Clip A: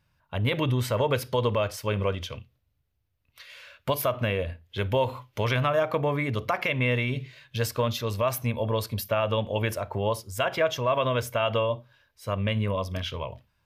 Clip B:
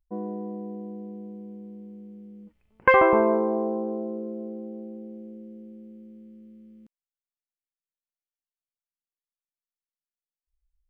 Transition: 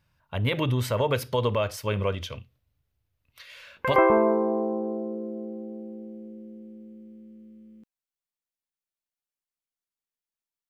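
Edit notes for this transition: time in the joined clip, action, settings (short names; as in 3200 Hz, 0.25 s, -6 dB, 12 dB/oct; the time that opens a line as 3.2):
clip A
3.54 add clip B from 2.57 s 0.42 s -11.5 dB
3.96 switch to clip B from 2.99 s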